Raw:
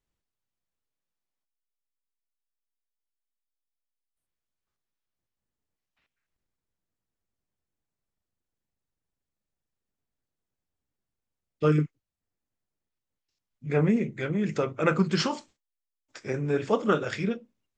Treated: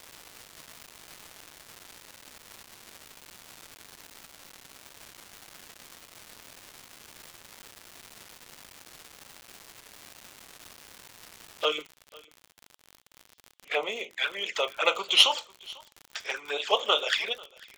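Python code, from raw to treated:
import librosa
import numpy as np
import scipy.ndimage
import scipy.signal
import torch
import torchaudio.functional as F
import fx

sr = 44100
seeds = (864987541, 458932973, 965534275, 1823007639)

y = fx.tracing_dist(x, sr, depth_ms=0.032)
y = fx.env_flanger(y, sr, rest_ms=5.9, full_db=-22.5)
y = scipy.signal.sosfilt(scipy.signal.butter(4, 650.0, 'highpass', fs=sr, output='sos'), y)
y = fx.peak_eq(y, sr, hz=3300.0, db=13.5, octaves=0.54)
y = y + 10.0 ** (-23.5 / 20.0) * np.pad(y, (int(496 * sr / 1000.0), 0))[:len(y)]
y = fx.dmg_crackle(y, sr, seeds[0], per_s=fx.steps((0.0, 550.0), (11.65, 67.0)), level_db=-42.0)
y = fx.record_warp(y, sr, rpm=78.0, depth_cents=100.0)
y = y * librosa.db_to_amplitude(8.0)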